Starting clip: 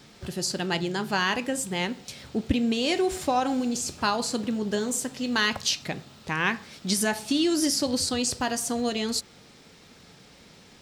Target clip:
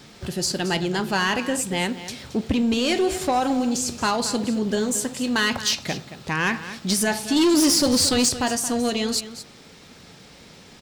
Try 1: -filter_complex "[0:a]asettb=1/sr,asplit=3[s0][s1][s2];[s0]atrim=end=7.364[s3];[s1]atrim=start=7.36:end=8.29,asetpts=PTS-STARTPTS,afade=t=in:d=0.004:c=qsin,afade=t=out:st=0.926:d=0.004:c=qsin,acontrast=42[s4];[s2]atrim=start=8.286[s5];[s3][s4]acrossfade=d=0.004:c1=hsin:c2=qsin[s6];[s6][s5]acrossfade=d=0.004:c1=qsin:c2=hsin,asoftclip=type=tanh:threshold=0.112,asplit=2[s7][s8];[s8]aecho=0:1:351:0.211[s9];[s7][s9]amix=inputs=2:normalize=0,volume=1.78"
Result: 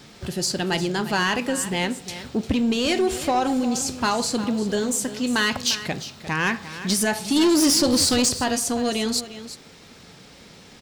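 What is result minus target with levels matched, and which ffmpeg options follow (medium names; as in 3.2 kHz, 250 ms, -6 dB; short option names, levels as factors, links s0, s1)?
echo 127 ms late
-filter_complex "[0:a]asettb=1/sr,asplit=3[s0][s1][s2];[s0]atrim=end=7.364[s3];[s1]atrim=start=7.36:end=8.29,asetpts=PTS-STARTPTS,afade=t=in:d=0.004:c=qsin,afade=t=out:st=0.926:d=0.004:c=qsin,acontrast=42[s4];[s2]atrim=start=8.286[s5];[s3][s4]acrossfade=d=0.004:c1=hsin:c2=qsin[s6];[s6][s5]acrossfade=d=0.004:c1=qsin:c2=hsin,asoftclip=type=tanh:threshold=0.112,asplit=2[s7][s8];[s8]aecho=0:1:224:0.211[s9];[s7][s9]amix=inputs=2:normalize=0,volume=1.78"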